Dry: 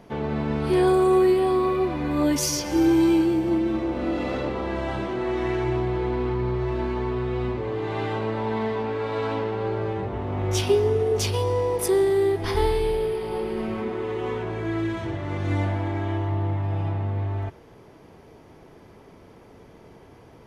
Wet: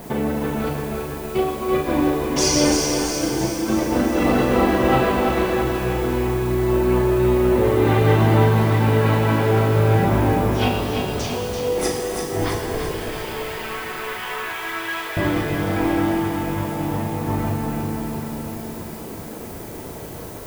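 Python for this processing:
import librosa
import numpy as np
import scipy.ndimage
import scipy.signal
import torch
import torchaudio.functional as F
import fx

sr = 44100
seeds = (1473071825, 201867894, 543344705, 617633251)

y = fx.highpass(x, sr, hz=1300.0, slope=12, at=(12.91, 15.17))
y = fx.dereverb_blind(y, sr, rt60_s=0.78)
y = scipy.signal.sosfilt(scipy.signal.butter(2, 7600.0, 'lowpass', fs=sr, output='sos'), y)
y = fx.high_shelf(y, sr, hz=5000.0, db=-8.5)
y = fx.over_compress(y, sr, threshold_db=-31.0, ratio=-0.5)
y = fx.dmg_noise_colour(y, sr, seeds[0], colour='blue', level_db=-53.0)
y = fx.doubler(y, sr, ms=37.0, db=-5.0)
y = fx.echo_feedback(y, sr, ms=335, feedback_pct=55, wet_db=-6)
y = fx.rev_shimmer(y, sr, seeds[1], rt60_s=3.0, semitones=7, shimmer_db=-8, drr_db=2.0)
y = y * librosa.db_to_amplitude(6.5)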